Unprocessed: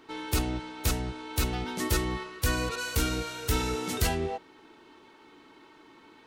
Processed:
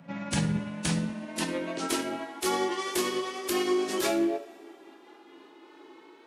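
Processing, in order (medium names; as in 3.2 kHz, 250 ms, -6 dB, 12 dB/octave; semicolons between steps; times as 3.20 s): pitch bend over the whole clip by -8 st ending unshifted; two-slope reverb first 0.47 s, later 2.8 s, from -22 dB, DRR 6.5 dB; high-pass sweep 140 Hz -> 370 Hz, 0.69–1.74 s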